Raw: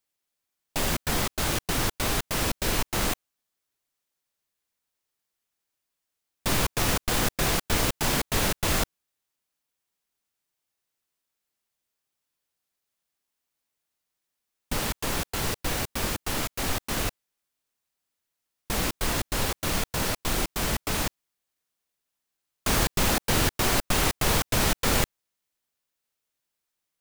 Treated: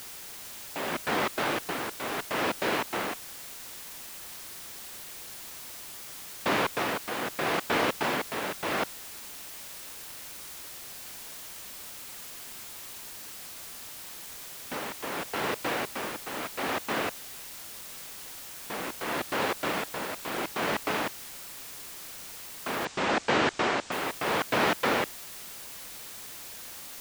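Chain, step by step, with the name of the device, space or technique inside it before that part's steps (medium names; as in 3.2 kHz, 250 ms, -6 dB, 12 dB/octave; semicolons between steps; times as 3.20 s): shortwave radio (band-pass 290–2500 Hz; tremolo 0.77 Hz, depth 58%; white noise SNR 9 dB); 22.85–23.92 s: steep low-pass 8.1 kHz 48 dB/octave; trim +4 dB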